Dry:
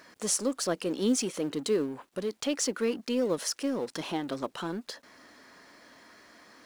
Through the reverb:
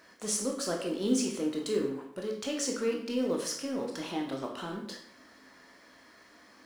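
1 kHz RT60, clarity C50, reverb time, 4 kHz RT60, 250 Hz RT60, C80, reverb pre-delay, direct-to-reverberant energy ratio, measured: 0.65 s, 5.5 dB, 0.65 s, 0.50 s, 0.70 s, 9.0 dB, 15 ms, 0.0 dB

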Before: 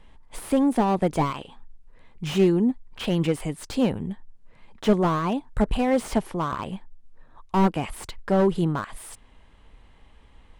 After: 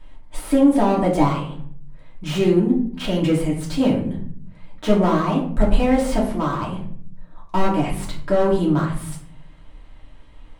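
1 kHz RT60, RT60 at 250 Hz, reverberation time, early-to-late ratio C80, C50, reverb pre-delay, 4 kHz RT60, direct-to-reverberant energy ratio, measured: 0.50 s, 0.95 s, 0.55 s, 10.0 dB, 6.5 dB, 3 ms, 0.35 s, -4.0 dB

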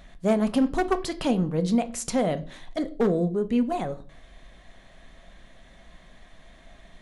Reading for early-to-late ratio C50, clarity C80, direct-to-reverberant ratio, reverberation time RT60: 17.5 dB, 22.5 dB, 9.5 dB, 0.40 s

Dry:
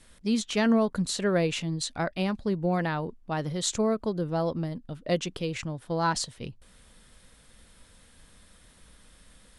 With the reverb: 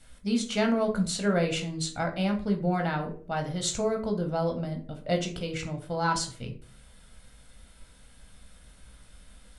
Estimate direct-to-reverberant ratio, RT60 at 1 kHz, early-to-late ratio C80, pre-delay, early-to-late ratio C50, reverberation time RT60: 2.5 dB, 0.40 s, 16.0 dB, 15 ms, 10.5 dB, 0.45 s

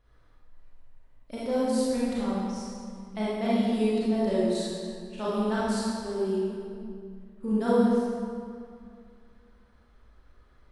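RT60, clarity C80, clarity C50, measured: 2.3 s, -1.5 dB, -5.0 dB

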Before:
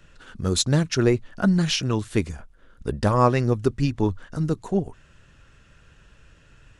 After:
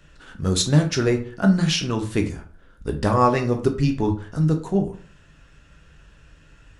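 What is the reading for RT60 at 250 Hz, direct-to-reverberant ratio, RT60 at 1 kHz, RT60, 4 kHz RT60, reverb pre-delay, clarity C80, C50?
0.50 s, 4.0 dB, 0.40 s, 0.45 s, 0.30 s, 8 ms, 16.0 dB, 11.5 dB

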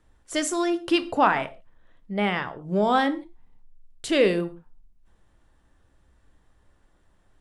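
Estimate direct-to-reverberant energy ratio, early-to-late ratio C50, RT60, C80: 10.5 dB, 16.5 dB, not exponential, 20.5 dB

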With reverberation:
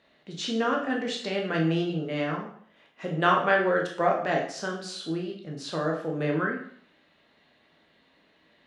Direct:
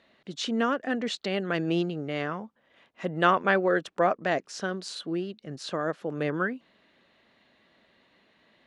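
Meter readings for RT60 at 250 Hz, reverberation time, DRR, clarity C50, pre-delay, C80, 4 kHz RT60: 0.55 s, 0.55 s, -0.5 dB, 6.0 dB, 7 ms, 10.0 dB, 0.55 s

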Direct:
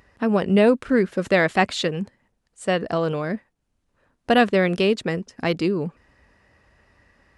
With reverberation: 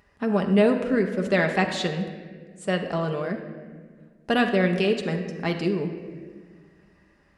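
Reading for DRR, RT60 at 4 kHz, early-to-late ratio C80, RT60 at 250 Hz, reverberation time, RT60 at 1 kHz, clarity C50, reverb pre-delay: 3.5 dB, 1.1 s, 9.0 dB, 2.4 s, 1.6 s, 1.3 s, 7.5 dB, 5 ms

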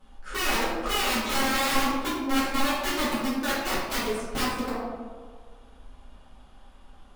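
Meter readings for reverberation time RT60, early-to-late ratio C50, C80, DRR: 1.7 s, -1.0 dB, 2.0 dB, -12.0 dB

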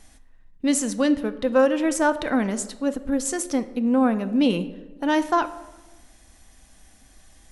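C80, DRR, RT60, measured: 16.5 dB, 11.0 dB, 1.2 s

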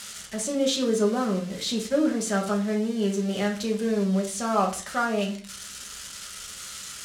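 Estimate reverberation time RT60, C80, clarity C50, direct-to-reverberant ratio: 0.45 s, 15.5 dB, 9.5 dB, -0.5 dB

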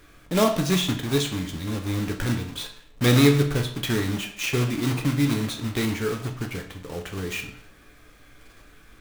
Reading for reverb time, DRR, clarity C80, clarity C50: 0.60 s, 3.0 dB, 12.5 dB, 9.0 dB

